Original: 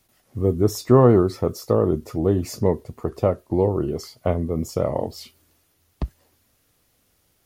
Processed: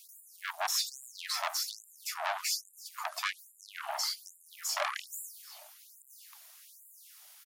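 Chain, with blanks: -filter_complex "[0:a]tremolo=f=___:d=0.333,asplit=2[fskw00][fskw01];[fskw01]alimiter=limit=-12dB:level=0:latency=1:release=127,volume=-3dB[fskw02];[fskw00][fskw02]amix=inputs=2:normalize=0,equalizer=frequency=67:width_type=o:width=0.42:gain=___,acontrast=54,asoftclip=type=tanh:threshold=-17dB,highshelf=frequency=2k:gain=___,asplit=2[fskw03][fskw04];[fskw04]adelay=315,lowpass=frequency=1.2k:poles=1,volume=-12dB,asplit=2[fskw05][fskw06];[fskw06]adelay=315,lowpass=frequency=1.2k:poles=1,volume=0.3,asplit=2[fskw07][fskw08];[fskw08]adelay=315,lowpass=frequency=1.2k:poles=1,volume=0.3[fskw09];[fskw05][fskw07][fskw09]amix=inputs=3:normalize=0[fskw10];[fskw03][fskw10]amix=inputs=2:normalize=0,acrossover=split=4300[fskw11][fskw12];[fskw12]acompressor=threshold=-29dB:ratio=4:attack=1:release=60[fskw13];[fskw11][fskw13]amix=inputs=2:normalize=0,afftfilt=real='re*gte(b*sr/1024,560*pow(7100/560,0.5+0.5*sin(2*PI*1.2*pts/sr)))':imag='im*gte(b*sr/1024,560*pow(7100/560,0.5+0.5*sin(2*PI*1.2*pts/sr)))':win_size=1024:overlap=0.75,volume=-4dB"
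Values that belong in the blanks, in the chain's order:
250, 12.5, 7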